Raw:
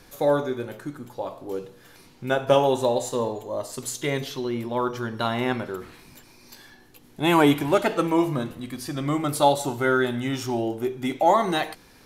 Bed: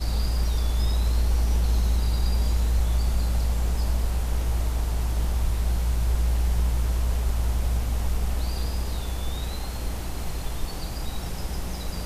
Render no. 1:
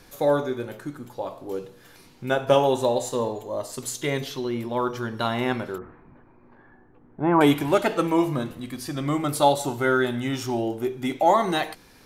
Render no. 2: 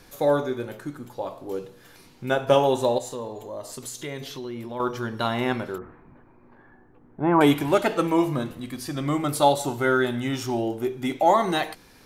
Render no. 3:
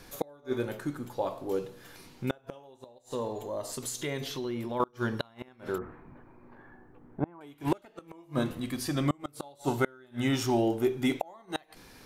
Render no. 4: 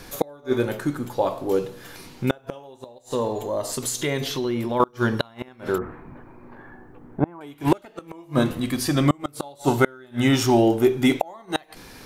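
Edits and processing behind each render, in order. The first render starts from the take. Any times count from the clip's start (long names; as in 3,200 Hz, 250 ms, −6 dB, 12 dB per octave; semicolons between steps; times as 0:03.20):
0:05.78–0:07.41: low-pass filter 1,500 Hz 24 dB per octave
0:02.98–0:04.80: downward compressor 2 to 1, threshold −35 dBFS
gate with flip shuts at −15 dBFS, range −32 dB
level +9 dB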